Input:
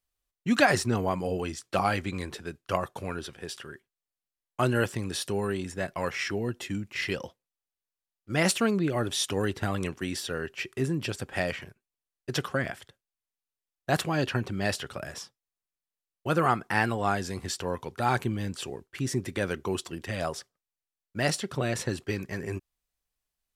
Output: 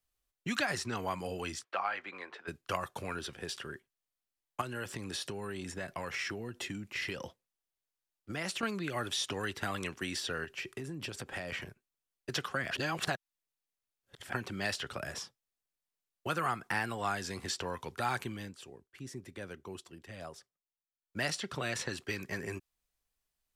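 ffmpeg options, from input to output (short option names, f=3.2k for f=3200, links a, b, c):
-filter_complex "[0:a]asplit=3[a][b][c];[a]afade=t=out:st=1.63:d=0.02[d];[b]highpass=770,lowpass=2.1k,afade=t=in:st=1.63:d=0.02,afade=t=out:st=2.47:d=0.02[e];[c]afade=t=in:st=2.47:d=0.02[f];[d][e][f]amix=inputs=3:normalize=0,asettb=1/sr,asplit=3[g][h][i];[g]atrim=end=4.614[j];[h]atrim=start=4.61:end=8.63,asetpts=PTS-STARTPTS,afade=t=in:d=0.004:c=qsin,afade=t=out:st=4.016:d=0.004:c=qsin,acompressor=threshold=-33dB:ratio=3:attack=3.2:release=140:knee=1:detection=peak[k];[i]atrim=start=8.626[l];[j][k]acrossfade=d=0.004:c1=hsin:c2=qsin[m];[m][l]acrossfade=d=0.004:c1=qsin:c2=hsin,asettb=1/sr,asplit=3[n][o][p];[n]atrim=end=10.444[q];[o]atrim=start=10.44:end=11.52,asetpts=PTS-STARTPTS,afade=t=in:d=0.004:c=qsin,afade=t=out:st=1.076:d=0.004:c=qsin,acompressor=threshold=-35dB:ratio=6:attack=3.2:release=140:knee=1:detection=peak[r];[p]atrim=start=11.516[s];[q][r]acrossfade=d=0.004:c1=hsin:c2=qsin[t];[t][s]acrossfade=d=0.004:c1=qsin:c2=hsin,asplit=5[u][v][w][x][y];[u]atrim=end=12.712[z];[v]atrim=start=12.708:end=14.332,asetpts=PTS-STARTPTS,areverse[aa];[w]atrim=start=14.328:end=18.54,asetpts=PTS-STARTPTS,afade=t=out:st=3.972:d=0.24:silence=0.199526[ab];[x]atrim=start=18.54:end=20.99,asetpts=PTS-STARTPTS,volume=-14dB[ac];[y]atrim=start=20.99,asetpts=PTS-STARTPTS,afade=t=in:d=0.24:silence=0.199526[ad];[z][aa]acrossfade=d=0.004:c1=hsin:c2=hsin[ae];[ab][ac][ad]concat=n=3:v=0:a=1[af];[ae][af]acrossfade=d=0.004:c1=hsin:c2=hsin,acrossover=split=180|960|7000[ag][ah][ai][aj];[ag]acompressor=threshold=-47dB:ratio=4[ak];[ah]acompressor=threshold=-40dB:ratio=4[al];[ai]acompressor=threshold=-32dB:ratio=4[am];[aj]acompressor=threshold=-51dB:ratio=4[an];[ak][al][am][an]amix=inputs=4:normalize=0"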